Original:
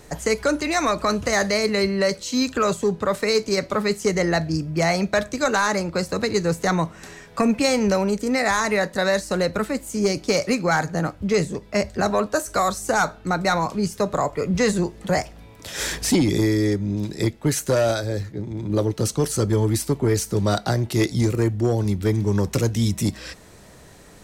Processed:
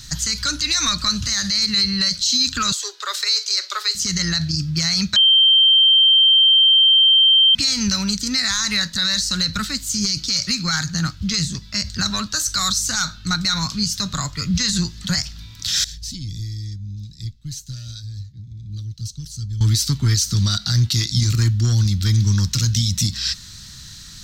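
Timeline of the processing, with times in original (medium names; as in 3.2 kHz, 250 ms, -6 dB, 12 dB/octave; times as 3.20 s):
2.72–3.95 s: steep high-pass 360 Hz 96 dB/octave
5.16–7.55 s: bleep 3.14 kHz -14 dBFS
15.84–19.61 s: amplifier tone stack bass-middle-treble 10-0-1
whole clip: FFT filter 130 Hz 0 dB, 270 Hz -12 dB, 440 Hz -29 dB, 730 Hz -24 dB, 1.4 kHz -4 dB, 2.3 kHz -6 dB, 4.1 kHz +12 dB, 6.2 kHz +8 dB, 10 kHz -6 dB, 15 kHz +1 dB; loudness maximiser +16.5 dB; trim -8.5 dB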